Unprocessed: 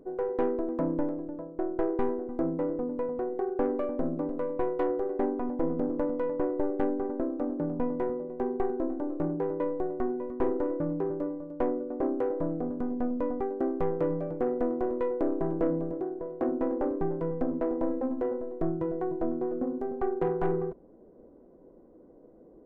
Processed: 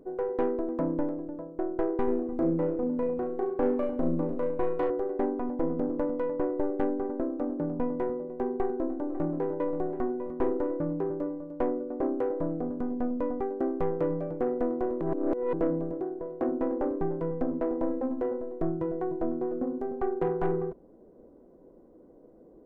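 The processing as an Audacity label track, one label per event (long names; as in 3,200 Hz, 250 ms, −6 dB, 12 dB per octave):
2.040000	4.900000	flutter between parallel walls apart 6.2 metres, dies away in 0.45 s
8.610000	9.520000	delay throw 530 ms, feedback 40%, level −11 dB
15.010000	15.530000	reverse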